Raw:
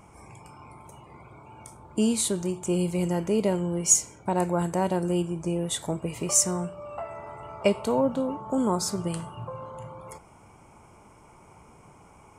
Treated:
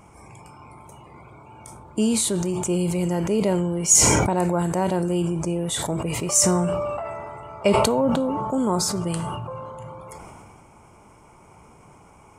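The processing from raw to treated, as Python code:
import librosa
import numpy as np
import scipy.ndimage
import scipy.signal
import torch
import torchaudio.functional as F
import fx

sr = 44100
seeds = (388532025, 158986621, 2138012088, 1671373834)

y = fx.sustainer(x, sr, db_per_s=22.0)
y = y * librosa.db_to_amplitude(2.0)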